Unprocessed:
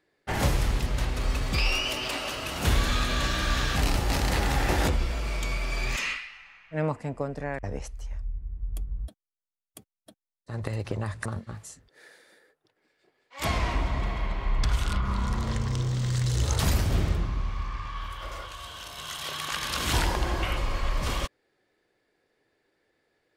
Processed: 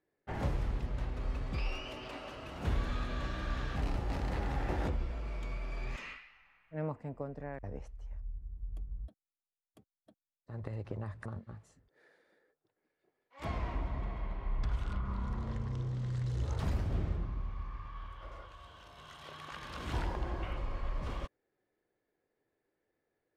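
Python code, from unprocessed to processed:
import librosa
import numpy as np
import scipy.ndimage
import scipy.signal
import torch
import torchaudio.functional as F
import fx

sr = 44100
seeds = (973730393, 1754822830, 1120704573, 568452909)

y = fx.lowpass(x, sr, hz=1100.0, slope=6)
y = y * 10.0 ** (-8.5 / 20.0)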